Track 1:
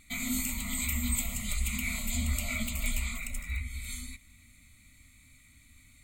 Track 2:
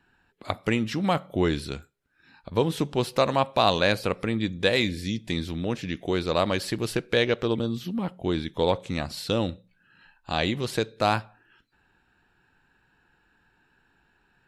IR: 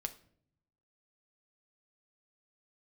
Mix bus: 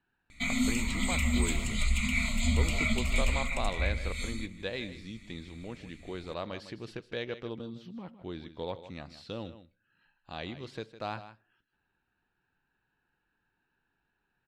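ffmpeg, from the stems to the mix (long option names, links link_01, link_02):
-filter_complex "[0:a]adelay=300,volume=3dB,asplit=2[link_01][link_02];[link_02]volume=-11dB[link_03];[1:a]volume=-14.5dB,asplit=3[link_04][link_05][link_06];[link_05]volume=-20.5dB[link_07];[link_06]volume=-12.5dB[link_08];[2:a]atrim=start_sample=2205[link_09];[link_03][link_07]amix=inputs=2:normalize=0[link_10];[link_10][link_09]afir=irnorm=-1:irlink=0[link_11];[link_08]aecho=0:1:156:1[link_12];[link_01][link_04][link_11][link_12]amix=inputs=4:normalize=0,lowpass=5100"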